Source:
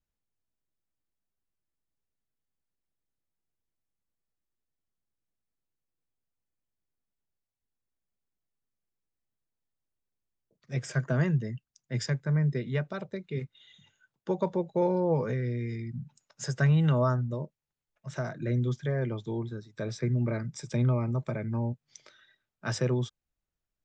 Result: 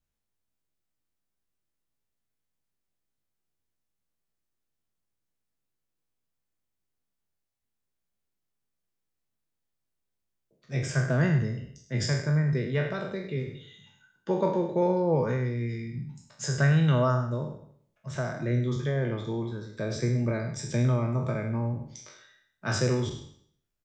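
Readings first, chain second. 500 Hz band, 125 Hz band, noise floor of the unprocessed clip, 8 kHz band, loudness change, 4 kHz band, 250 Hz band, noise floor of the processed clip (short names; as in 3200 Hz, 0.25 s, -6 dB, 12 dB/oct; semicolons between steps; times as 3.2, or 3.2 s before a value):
+2.5 dB, +1.5 dB, under -85 dBFS, n/a, +2.0 dB, +5.0 dB, +2.0 dB, -82 dBFS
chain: spectral trails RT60 0.62 s; on a send: echo 0.101 s -12.5 dB; on the sum: gain +1 dB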